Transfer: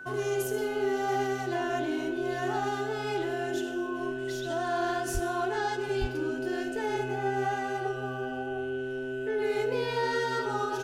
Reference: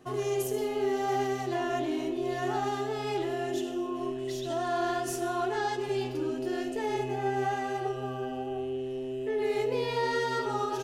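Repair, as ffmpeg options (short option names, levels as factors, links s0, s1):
-filter_complex "[0:a]bandreject=f=1500:w=30,asplit=3[s0][s1][s2];[s0]afade=t=out:st=5.13:d=0.02[s3];[s1]highpass=f=140:w=0.5412,highpass=f=140:w=1.3066,afade=t=in:st=5.13:d=0.02,afade=t=out:st=5.25:d=0.02[s4];[s2]afade=t=in:st=5.25:d=0.02[s5];[s3][s4][s5]amix=inputs=3:normalize=0,asplit=3[s6][s7][s8];[s6]afade=t=out:st=6:d=0.02[s9];[s7]highpass=f=140:w=0.5412,highpass=f=140:w=1.3066,afade=t=in:st=6:d=0.02,afade=t=out:st=6.12:d=0.02[s10];[s8]afade=t=in:st=6.12:d=0.02[s11];[s9][s10][s11]amix=inputs=3:normalize=0"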